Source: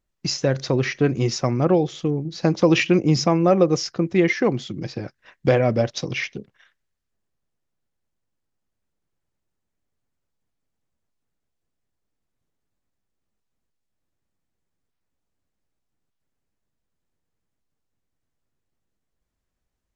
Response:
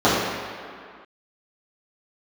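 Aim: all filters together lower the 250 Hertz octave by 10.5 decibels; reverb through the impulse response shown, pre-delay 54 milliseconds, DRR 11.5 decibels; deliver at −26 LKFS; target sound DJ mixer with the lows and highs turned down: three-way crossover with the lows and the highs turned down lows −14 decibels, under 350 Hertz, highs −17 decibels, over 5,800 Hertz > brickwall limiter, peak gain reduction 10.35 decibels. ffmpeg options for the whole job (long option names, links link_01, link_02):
-filter_complex "[0:a]equalizer=frequency=250:width_type=o:gain=-6.5,asplit=2[link_01][link_02];[1:a]atrim=start_sample=2205,adelay=54[link_03];[link_02][link_03]afir=irnorm=-1:irlink=0,volume=-36.5dB[link_04];[link_01][link_04]amix=inputs=2:normalize=0,acrossover=split=350 5800:gain=0.2 1 0.141[link_05][link_06][link_07];[link_05][link_06][link_07]amix=inputs=3:normalize=0,volume=3dB,alimiter=limit=-15.5dB:level=0:latency=1"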